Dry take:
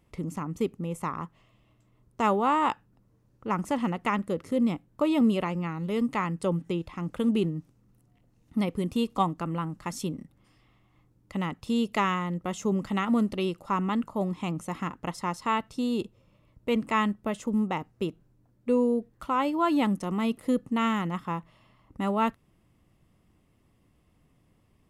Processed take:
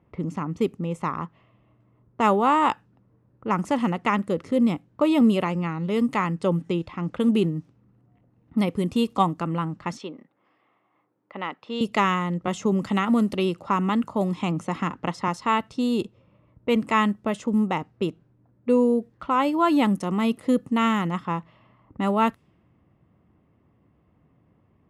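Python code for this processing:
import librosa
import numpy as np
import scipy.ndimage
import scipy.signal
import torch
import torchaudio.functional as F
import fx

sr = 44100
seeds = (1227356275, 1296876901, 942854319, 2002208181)

y = fx.bandpass_edges(x, sr, low_hz=440.0, high_hz=5700.0, at=(9.97, 11.81))
y = fx.band_squash(y, sr, depth_pct=40, at=(12.47, 15.28))
y = scipy.signal.sosfilt(scipy.signal.butter(2, 73.0, 'highpass', fs=sr, output='sos'), y)
y = fx.env_lowpass(y, sr, base_hz=1600.0, full_db=-24.0)
y = y * librosa.db_to_amplitude(4.5)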